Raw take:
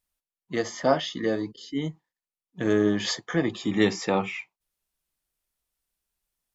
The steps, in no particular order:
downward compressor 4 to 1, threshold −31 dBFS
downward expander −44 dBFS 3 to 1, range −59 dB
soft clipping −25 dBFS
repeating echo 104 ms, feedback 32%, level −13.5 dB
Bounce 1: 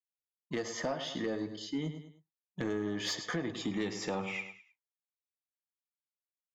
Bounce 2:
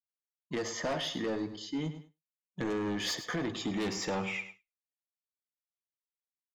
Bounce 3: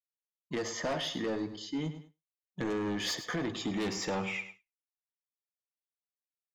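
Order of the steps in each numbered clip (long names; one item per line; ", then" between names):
downward expander, then repeating echo, then downward compressor, then soft clipping
soft clipping, then repeating echo, then downward compressor, then downward expander
soft clipping, then repeating echo, then downward expander, then downward compressor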